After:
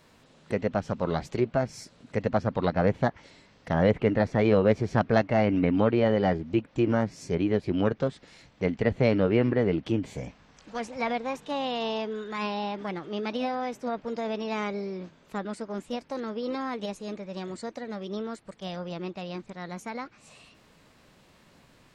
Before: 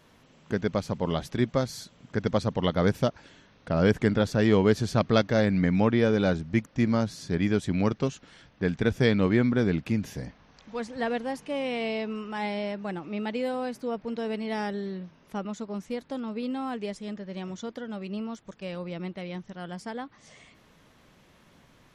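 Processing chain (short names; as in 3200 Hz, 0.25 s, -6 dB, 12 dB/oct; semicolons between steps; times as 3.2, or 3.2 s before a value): treble ducked by the level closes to 2100 Hz, closed at -22 dBFS; formant shift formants +4 st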